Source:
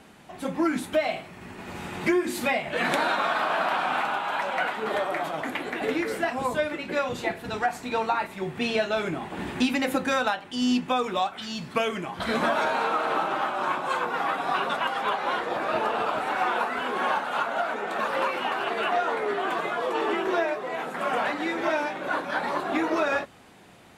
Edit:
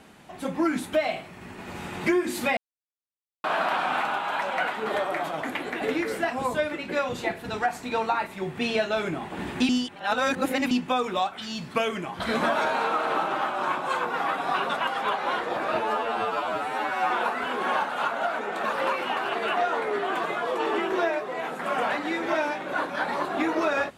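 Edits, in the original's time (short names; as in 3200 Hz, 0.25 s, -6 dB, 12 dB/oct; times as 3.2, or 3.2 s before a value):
2.57–3.44 mute
9.69–10.71 reverse
15.8–16.45 stretch 2×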